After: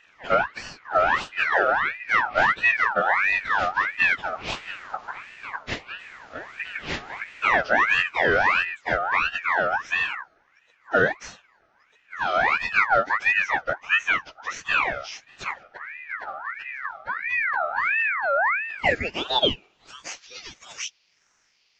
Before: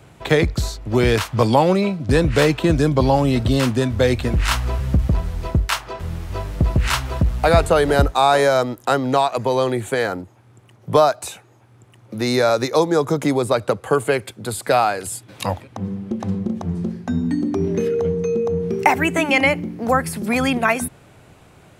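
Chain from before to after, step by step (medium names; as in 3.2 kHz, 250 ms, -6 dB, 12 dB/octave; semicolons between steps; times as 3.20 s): frequency axis rescaled in octaves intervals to 78%; high-pass sweep 300 Hz -> 3.5 kHz, 18.22–20.29 s; ring modulator with a swept carrier 1.6 kHz, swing 40%, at 1.5 Hz; trim -5 dB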